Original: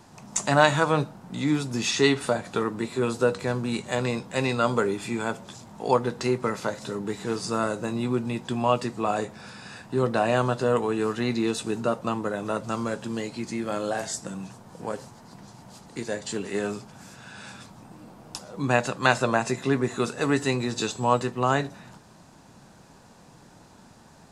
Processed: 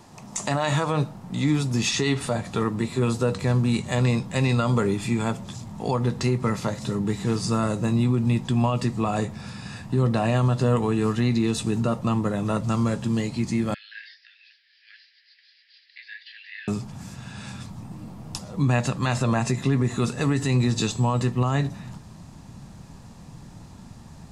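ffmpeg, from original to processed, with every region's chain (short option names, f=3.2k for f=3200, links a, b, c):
-filter_complex "[0:a]asettb=1/sr,asplit=3[a][b][c];[a]atrim=end=13.744[d];[b]atrim=start=13.74:end=16.68,asetpts=PTS-STARTPTS,afade=t=in:d=0.004:c=qsin,afade=t=out:st=2.936:d=0.004:c=qsin,acrossover=split=2600[e][f];[f]acompressor=threshold=-48dB:ratio=4:attack=1:release=60[g];[e][g]amix=inputs=2:normalize=0,asuperpass=centerf=2900:order=20:qfactor=0.83[h];[c]atrim=start=16.676[i];[d][h]acrossfade=d=0.004:c1=hsin:c2=qsin[j];[j][i]acrossfade=d=0.004:c1=qsin:c2=hsin,bandreject=f=1.5k:w=9.3,asubboost=boost=4:cutoff=200,alimiter=limit=-16dB:level=0:latency=1:release=64,volume=2.5dB"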